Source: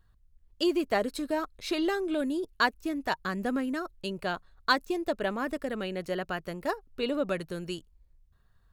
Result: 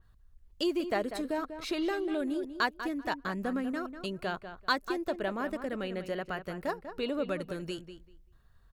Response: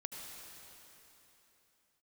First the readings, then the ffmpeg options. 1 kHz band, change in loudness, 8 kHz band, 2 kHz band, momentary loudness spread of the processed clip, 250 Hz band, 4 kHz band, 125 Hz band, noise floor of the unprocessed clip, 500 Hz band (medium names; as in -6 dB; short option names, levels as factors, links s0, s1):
-3.0 dB, -3.0 dB, -4.0 dB, -3.5 dB, 6 LU, -2.5 dB, -3.5 dB, -2.0 dB, -64 dBFS, -2.5 dB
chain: -filter_complex "[0:a]asplit=2[s0][s1];[s1]acompressor=threshold=0.01:ratio=6,volume=1.41[s2];[s0][s2]amix=inputs=2:normalize=0,asplit=2[s3][s4];[s4]adelay=194,lowpass=f=3100:p=1,volume=0.316,asplit=2[s5][s6];[s6]adelay=194,lowpass=f=3100:p=1,volume=0.19,asplit=2[s7][s8];[s8]adelay=194,lowpass=f=3100:p=1,volume=0.19[s9];[s3][s5][s7][s9]amix=inputs=4:normalize=0,adynamicequalizer=threshold=0.00501:dfrequency=3400:dqfactor=0.7:tfrequency=3400:tqfactor=0.7:attack=5:release=100:ratio=0.375:range=2:mode=cutabove:tftype=highshelf,volume=0.531"